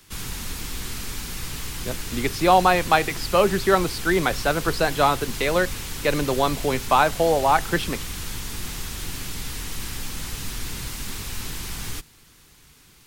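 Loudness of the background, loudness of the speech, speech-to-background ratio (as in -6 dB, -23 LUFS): -32.0 LUFS, -21.5 LUFS, 10.5 dB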